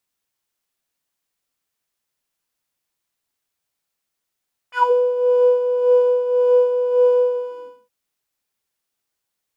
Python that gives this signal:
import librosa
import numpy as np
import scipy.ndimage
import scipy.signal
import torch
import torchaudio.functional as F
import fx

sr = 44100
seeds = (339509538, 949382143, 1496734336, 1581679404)

y = fx.sub_patch_tremolo(sr, seeds[0], note=83, wave='square', wave2='saw', interval_st=-12, detune_cents=16, level2_db=-9.0, sub_db=-1.0, noise_db=-10.0, kind='bandpass', cutoff_hz=210.0, q=7.6, env_oct=3.5, env_decay_s=0.18, env_sustain_pct=35, attack_ms=64.0, decay_s=0.23, sustain_db=-4.0, release_s=0.54, note_s=2.63, lfo_hz=1.8, tremolo_db=7)